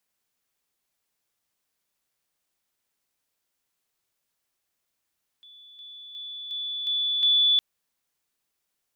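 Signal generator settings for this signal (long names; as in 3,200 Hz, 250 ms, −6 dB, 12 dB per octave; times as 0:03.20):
level staircase 3,460 Hz −47 dBFS, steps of 6 dB, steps 6, 0.36 s 0.00 s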